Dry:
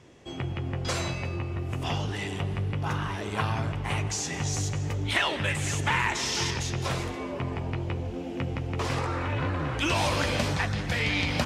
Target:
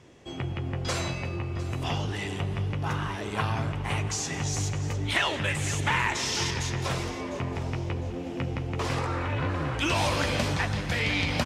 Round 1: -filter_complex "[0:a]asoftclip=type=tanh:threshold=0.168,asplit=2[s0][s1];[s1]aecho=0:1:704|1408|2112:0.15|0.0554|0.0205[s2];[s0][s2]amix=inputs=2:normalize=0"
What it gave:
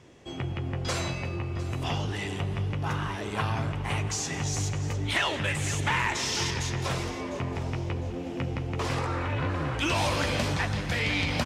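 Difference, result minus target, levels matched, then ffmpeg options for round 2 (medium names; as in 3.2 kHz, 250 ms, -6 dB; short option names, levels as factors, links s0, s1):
saturation: distortion +21 dB
-filter_complex "[0:a]asoftclip=type=tanh:threshold=0.631,asplit=2[s0][s1];[s1]aecho=0:1:704|1408|2112:0.15|0.0554|0.0205[s2];[s0][s2]amix=inputs=2:normalize=0"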